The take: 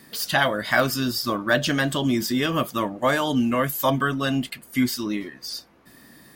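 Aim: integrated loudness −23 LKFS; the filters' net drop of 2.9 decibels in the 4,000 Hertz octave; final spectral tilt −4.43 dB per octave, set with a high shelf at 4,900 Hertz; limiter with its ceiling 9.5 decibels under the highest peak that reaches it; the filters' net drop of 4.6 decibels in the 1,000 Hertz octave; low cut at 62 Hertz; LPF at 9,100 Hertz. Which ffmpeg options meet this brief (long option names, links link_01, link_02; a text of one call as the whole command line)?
ffmpeg -i in.wav -af "highpass=62,lowpass=9100,equalizer=frequency=1000:width_type=o:gain=-6,equalizer=frequency=4000:width_type=o:gain=-7.5,highshelf=frequency=4900:gain=8,volume=5dB,alimiter=limit=-13.5dB:level=0:latency=1" out.wav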